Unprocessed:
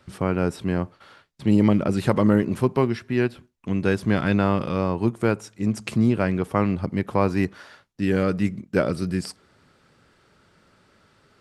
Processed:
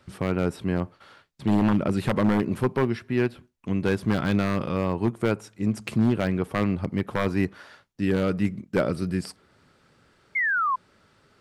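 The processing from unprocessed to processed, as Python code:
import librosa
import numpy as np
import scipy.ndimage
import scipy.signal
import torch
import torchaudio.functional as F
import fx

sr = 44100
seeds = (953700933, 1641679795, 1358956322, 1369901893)

y = 10.0 ** (-11.5 / 20.0) * (np.abs((x / 10.0 ** (-11.5 / 20.0) + 3.0) % 4.0 - 2.0) - 1.0)
y = fx.dynamic_eq(y, sr, hz=6400.0, q=1.1, threshold_db=-53.0, ratio=4.0, max_db=-4)
y = fx.spec_paint(y, sr, seeds[0], shape='fall', start_s=10.35, length_s=0.41, low_hz=1000.0, high_hz=2200.0, level_db=-22.0)
y = y * 10.0 ** (-1.5 / 20.0)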